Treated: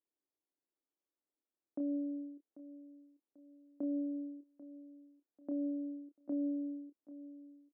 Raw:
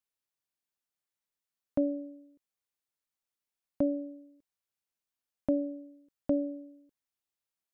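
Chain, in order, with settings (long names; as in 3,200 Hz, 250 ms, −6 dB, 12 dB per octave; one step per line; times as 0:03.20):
low-shelf EQ 240 Hz −8.5 dB
brickwall limiter −32.5 dBFS, peak gain reduction 12 dB
downward compressor, threshold −47 dBFS, peak gain reduction 10.5 dB
four-pole ladder band-pass 340 Hz, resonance 60%
double-tracking delay 28 ms −8 dB
repeating echo 791 ms, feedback 39%, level −16 dB
level +15.5 dB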